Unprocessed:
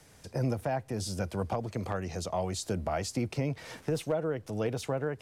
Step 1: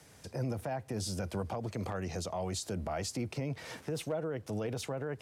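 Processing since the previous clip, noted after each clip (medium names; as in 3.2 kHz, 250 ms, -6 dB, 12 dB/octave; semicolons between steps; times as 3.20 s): peak limiter -27 dBFS, peak gain reduction 6.5 dB; high-pass 61 Hz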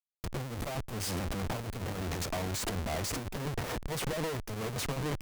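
treble shelf 5.6 kHz +10.5 dB; Schmitt trigger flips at -40 dBFS; Chebyshev shaper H 4 -8 dB, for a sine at -30 dBFS; trim +1 dB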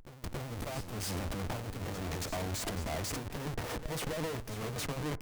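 reverse echo 277 ms -12 dB; FDN reverb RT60 0.43 s, high-frequency decay 0.25×, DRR 17 dB; trim -2.5 dB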